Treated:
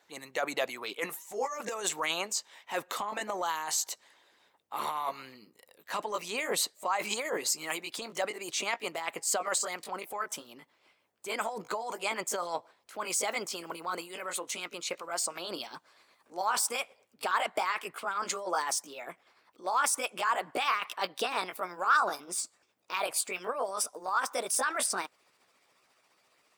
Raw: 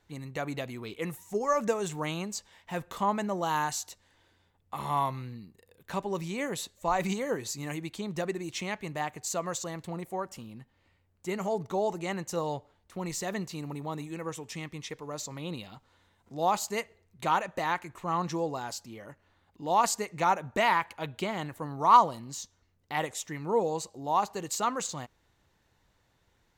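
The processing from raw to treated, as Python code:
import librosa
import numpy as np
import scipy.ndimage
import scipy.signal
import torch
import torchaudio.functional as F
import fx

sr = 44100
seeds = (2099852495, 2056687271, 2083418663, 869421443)

p1 = fx.pitch_glide(x, sr, semitones=4.5, runs='starting unshifted')
p2 = scipy.signal.sosfilt(scipy.signal.butter(2, 430.0, 'highpass', fs=sr, output='sos'), p1)
p3 = fx.transient(p2, sr, attack_db=-5, sustain_db=0)
p4 = fx.over_compress(p3, sr, threshold_db=-37.0, ratio=-0.5)
p5 = p3 + (p4 * 10.0 ** (0.0 / 20.0))
p6 = fx.hpss(p5, sr, part='harmonic', gain_db=-11)
y = p6 * 10.0 ** (2.0 / 20.0)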